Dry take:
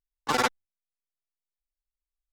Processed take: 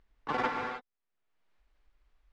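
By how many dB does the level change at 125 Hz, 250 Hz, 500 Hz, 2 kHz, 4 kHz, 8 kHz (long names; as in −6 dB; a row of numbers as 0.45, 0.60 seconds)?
−4.5 dB, −4.0 dB, −4.5 dB, −5.0 dB, −12.5 dB, below −20 dB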